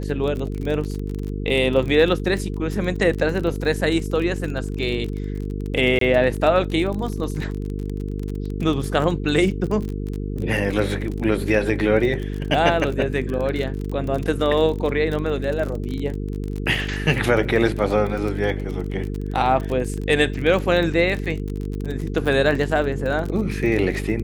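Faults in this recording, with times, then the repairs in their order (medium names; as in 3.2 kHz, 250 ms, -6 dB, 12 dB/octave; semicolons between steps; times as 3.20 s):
buzz 50 Hz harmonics 9 -27 dBFS
crackle 33 per s -26 dBFS
5.99–6.01 s: dropout 23 ms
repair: de-click; de-hum 50 Hz, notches 9; interpolate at 5.99 s, 23 ms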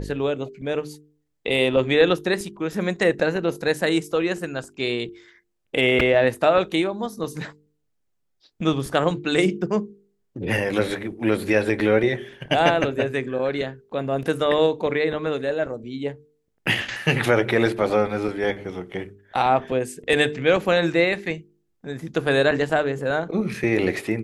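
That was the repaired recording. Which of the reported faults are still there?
nothing left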